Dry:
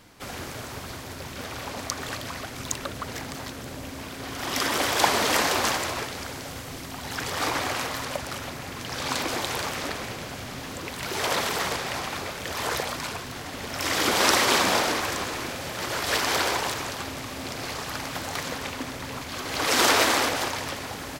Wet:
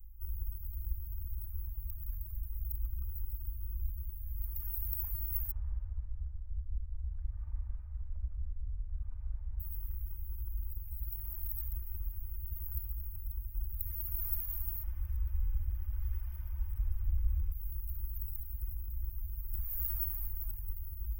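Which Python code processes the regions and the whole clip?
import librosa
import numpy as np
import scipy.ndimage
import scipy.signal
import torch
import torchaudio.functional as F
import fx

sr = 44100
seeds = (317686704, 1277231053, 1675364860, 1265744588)

y = fx.chain(x, sr, fx.lowpass(hz=1400.0, slope=12),
    fx.echo_single(ms=150, db=-8.5), at=(5.51, 9.6))
y = fx.chain(y, sr, fx.savgol(points=15),
    fx.env_flatten(amount_pct=70), at=(14.83, 17.52))
y = scipy.signal.sosfilt(scipy.signal.cheby2(4, 60, [170.0, 8800.0], 'bandstop', fs=sr, output='sos'), y)
y = y + 0.87 * np.pad(y, (int(3.3 * sr / 1000.0), 0))[:len(y)]
y = F.gain(torch.from_numpy(y), 15.0).numpy()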